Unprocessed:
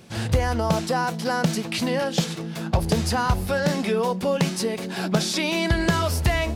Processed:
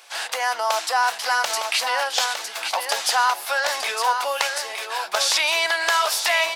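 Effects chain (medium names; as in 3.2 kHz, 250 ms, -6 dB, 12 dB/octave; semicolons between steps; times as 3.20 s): high-pass 760 Hz 24 dB/octave; 4.46–5.08 s: compression, threshold -34 dBFS, peak gain reduction 9 dB; on a send: delay 909 ms -6.5 dB; on the sum: trim +6.5 dB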